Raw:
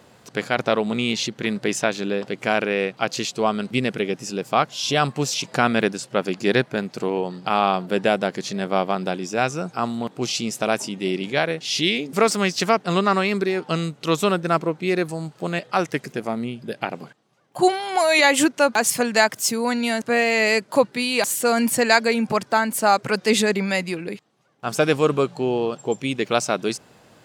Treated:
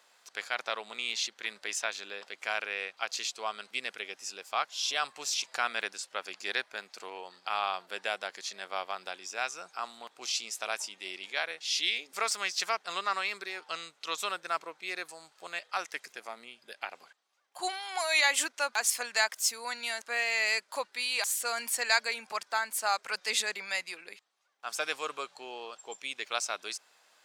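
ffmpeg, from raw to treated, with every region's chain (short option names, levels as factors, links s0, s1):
-filter_complex "[0:a]asettb=1/sr,asplit=3[s0][s1][s2];[s0]atrim=end=13.684[s3];[s1]atrim=start=13.68:end=14.18,asetpts=PTS-STARTPTS,afade=t=in:d=0.004:c=qsin,afade=t=out:st=0.496:d=0.004:c=qsin,highpass=60,acrossover=split=8300[s4][s5];[s5]acompressor=threshold=0.00126:ratio=4:attack=1:release=60[s6];[s4][s6]amix=inputs=2:normalize=0[s7];[s2]atrim=start=14.176[s8];[s3][s7]acrossfade=d=0.004:c1=hsin:c2=qsin[s9];[s9][s8]acrossfade=d=0.004:c1=qsin:c2=hsin,highpass=980,equalizer=f=5300:w=0.61:g=3,bandreject=f=2900:w=29,volume=0.376"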